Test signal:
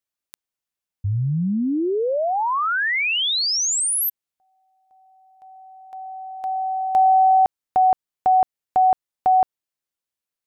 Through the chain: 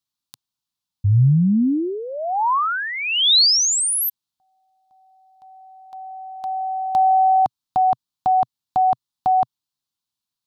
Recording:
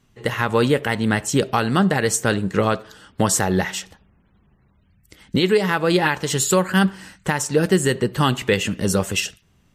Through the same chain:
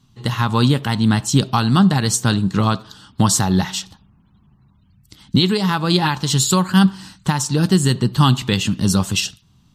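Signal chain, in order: graphic EQ 125/250/500/1000/2000/4000 Hz +8/+5/-11/+7/-9/+10 dB

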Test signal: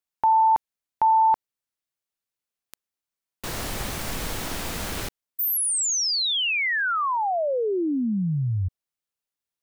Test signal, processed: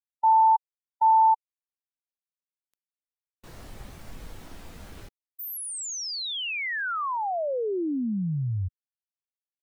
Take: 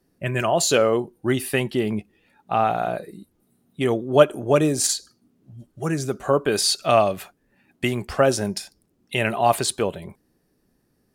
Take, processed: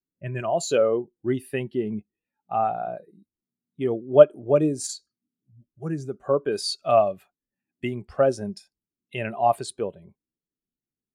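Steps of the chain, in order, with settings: spectral contrast expander 1.5:1

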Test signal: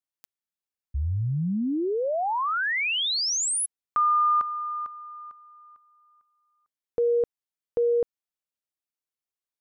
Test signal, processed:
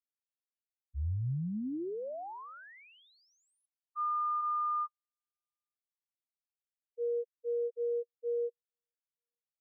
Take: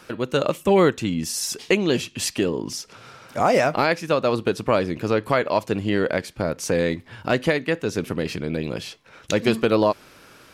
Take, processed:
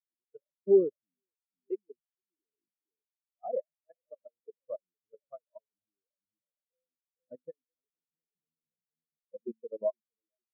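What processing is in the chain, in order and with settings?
bucket-brigade echo 463 ms, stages 2048, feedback 35%, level -8.5 dB; level held to a coarse grid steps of 18 dB; spectral contrast expander 4:1; trim -6 dB

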